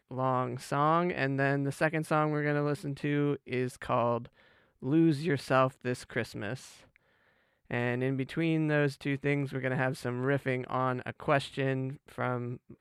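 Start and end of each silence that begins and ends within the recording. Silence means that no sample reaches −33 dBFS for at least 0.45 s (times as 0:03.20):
0:04.25–0:04.83
0:06.55–0:07.71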